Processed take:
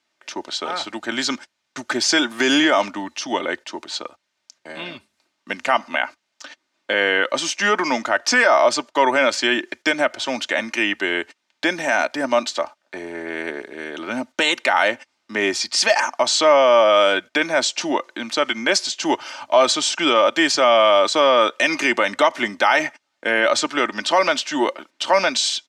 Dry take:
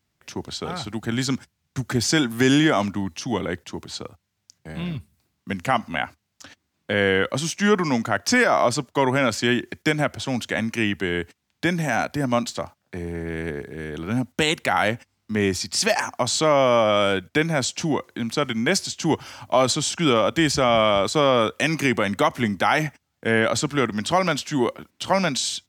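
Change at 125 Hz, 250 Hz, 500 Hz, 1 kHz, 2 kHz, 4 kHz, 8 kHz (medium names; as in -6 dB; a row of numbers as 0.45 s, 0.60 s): -18.0 dB, -2.0 dB, +3.5 dB, +4.5 dB, +5.0 dB, +5.5 dB, +2.5 dB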